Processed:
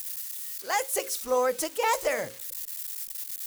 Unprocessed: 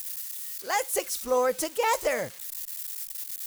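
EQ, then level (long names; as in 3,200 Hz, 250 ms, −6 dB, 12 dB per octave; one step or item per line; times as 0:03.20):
low-shelf EQ 230 Hz −3.5 dB
mains-hum notches 60/120/180/240/300/360/420/480/540 Hz
0.0 dB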